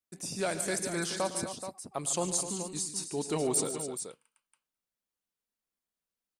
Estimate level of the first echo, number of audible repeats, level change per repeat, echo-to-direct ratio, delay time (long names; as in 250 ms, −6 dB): −16.0 dB, 4, repeats not evenly spaced, −5.5 dB, 107 ms